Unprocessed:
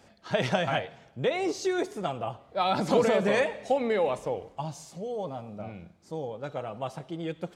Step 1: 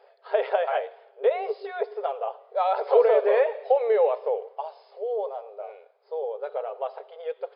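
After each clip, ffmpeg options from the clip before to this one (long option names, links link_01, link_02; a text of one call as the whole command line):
ffmpeg -i in.wav -filter_complex "[0:a]tiltshelf=frequency=1200:gain=8.5,afftfilt=real='re*between(b*sr/4096,390,5200)':imag='im*between(b*sr/4096,390,5200)':win_size=4096:overlap=0.75,acrossover=split=3500[link_01][link_02];[link_02]acompressor=threshold=-59dB:ratio=4:attack=1:release=60[link_03];[link_01][link_03]amix=inputs=2:normalize=0" out.wav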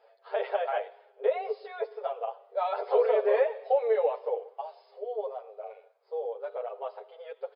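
ffmpeg -i in.wav -filter_complex "[0:a]asplit=2[link_01][link_02];[link_02]adelay=8.6,afreqshift=0.51[link_03];[link_01][link_03]amix=inputs=2:normalize=1,volume=-1.5dB" out.wav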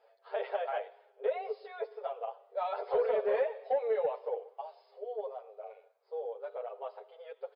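ffmpeg -i in.wav -af "asoftclip=type=tanh:threshold=-14.5dB,volume=-4.5dB" out.wav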